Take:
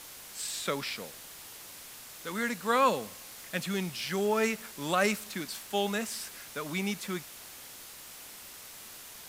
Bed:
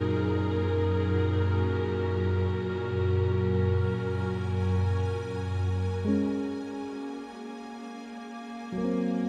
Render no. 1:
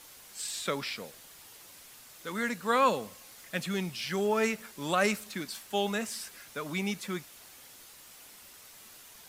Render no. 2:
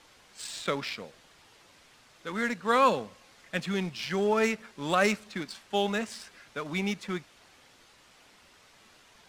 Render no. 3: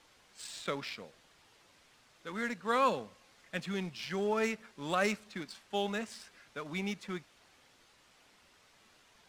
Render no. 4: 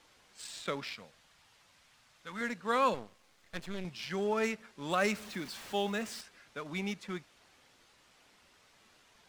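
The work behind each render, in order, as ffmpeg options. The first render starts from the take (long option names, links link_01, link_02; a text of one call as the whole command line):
ffmpeg -i in.wav -af "afftdn=noise_reduction=6:noise_floor=-48" out.wav
ffmpeg -i in.wav -filter_complex "[0:a]asplit=2[link_01][link_02];[link_02]aeval=exprs='val(0)*gte(abs(val(0)),0.02)':channel_layout=same,volume=-10dB[link_03];[link_01][link_03]amix=inputs=2:normalize=0,adynamicsmooth=sensitivity=5.5:basefreq=4700" out.wav
ffmpeg -i in.wav -af "volume=-6dB" out.wav
ffmpeg -i in.wav -filter_complex "[0:a]asettb=1/sr,asplit=3[link_01][link_02][link_03];[link_01]atrim=end=0.944[link_04];[link_02]atrim=start=0.94:end=2.41,asetpts=PTS-STARTPTS,afade=type=in:duration=0.004:curve=qsin,afade=type=out:start_time=1.466:duration=0.004:curve=qsin,equalizer=frequency=370:width_type=o:width=1.1:gain=-9.5[link_05];[link_03]atrim=start=2.406[link_06];[link_04][link_05]acrossfade=duration=0.004:curve1=hsin:curve2=qsin[link_07];[link_07][link_06]acrossfade=duration=0.004:curve1=qsin:curve2=hsin,asettb=1/sr,asplit=3[link_08][link_09][link_10];[link_08]atrim=end=2.944[link_11];[link_09]atrim=start=2.94:end=3.85,asetpts=PTS-STARTPTS,afade=type=in:duration=0.004:curve=qsin,afade=type=out:start_time=0.906:duration=0.004:curve=qsin,aeval=exprs='max(val(0),0)':channel_layout=same[link_12];[link_10]atrim=start=3.846[link_13];[link_11][link_12]acrossfade=duration=0.004:curve1=hsin:curve2=qsin[link_14];[link_14][link_13]acrossfade=duration=0.004:curve1=qsin:curve2=hsin,asettb=1/sr,asplit=3[link_15][link_16][link_17];[link_15]atrim=end=4.914[link_18];[link_16]atrim=start=4.91:end=6.21,asetpts=PTS-STARTPTS,afade=type=in:duration=0.004:curve=qsin,afade=type=out:start_time=1.296:duration=0.004:curve=qsin,aeval=exprs='val(0)+0.5*0.00631*sgn(val(0))':channel_layout=same[link_19];[link_17]atrim=start=6.206[link_20];[link_18][link_19]acrossfade=duration=0.004:curve1=hsin:curve2=qsin[link_21];[link_21][link_20]acrossfade=duration=0.004:curve1=qsin:curve2=hsin" out.wav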